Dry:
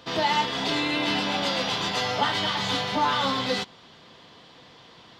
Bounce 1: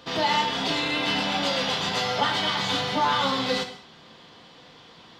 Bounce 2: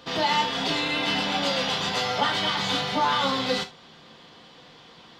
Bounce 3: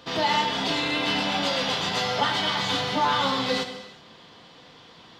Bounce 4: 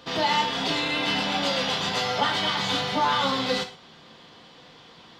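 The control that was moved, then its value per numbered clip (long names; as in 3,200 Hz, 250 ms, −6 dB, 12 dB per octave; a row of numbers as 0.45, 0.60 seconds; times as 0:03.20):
reverb whose tail is shaped and stops, gate: 230, 100, 400, 150 milliseconds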